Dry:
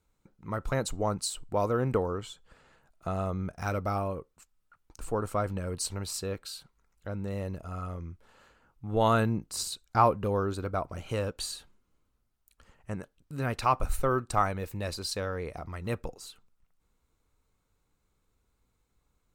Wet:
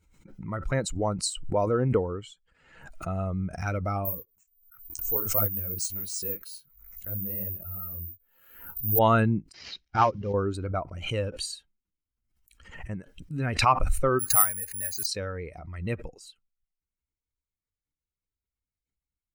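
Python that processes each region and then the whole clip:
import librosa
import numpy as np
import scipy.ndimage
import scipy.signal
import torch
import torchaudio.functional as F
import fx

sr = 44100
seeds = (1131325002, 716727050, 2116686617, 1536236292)

y = fx.chain(x, sr, fx.lowpass(hz=10000.0, slope=24),
    fx.resample_bad(factor=3, down='none', up='zero_stuff'),
    fx.detune_double(cents=50), at=(4.05, 8.99))
y = fx.chain(y, sr, fx.cvsd(bps=32000),
    fx.hum_notches(base_hz=60, count=6),
    fx.upward_expand(threshold_db=-34.0, expansion=2.5), at=(9.52, 10.34))
y = fx.chain(y, sr, fx.cheby_ripple(hz=6300.0, ripple_db=9),
    fx.resample_bad(factor=4, down='filtered', up='zero_stuff'), at=(14.19, 15.06))
y = fx.bin_expand(y, sr, power=1.5)
y = fx.notch(y, sr, hz=3500.0, q=9.9)
y = fx.pre_swell(y, sr, db_per_s=71.0)
y = F.gain(torch.from_numpy(y), 5.0).numpy()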